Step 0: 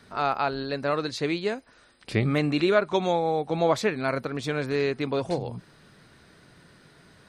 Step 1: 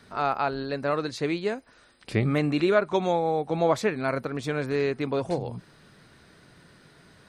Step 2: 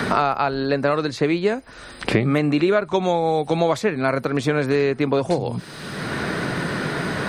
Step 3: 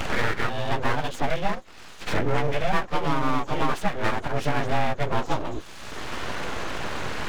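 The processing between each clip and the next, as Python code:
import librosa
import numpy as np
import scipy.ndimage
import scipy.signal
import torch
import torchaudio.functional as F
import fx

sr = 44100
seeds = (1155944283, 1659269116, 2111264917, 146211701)

y1 = fx.dynamic_eq(x, sr, hz=3900.0, q=0.94, threshold_db=-46.0, ratio=4.0, max_db=-4)
y2 = fx.band_squash(y1, sr, depth_pct=100)
y2 = F.gain(torch.from_numpy(y2), 5.5).numpy()
y3 = fx.partial_stretch(y2, sr, pct=91)
y3 = np.abs(y3)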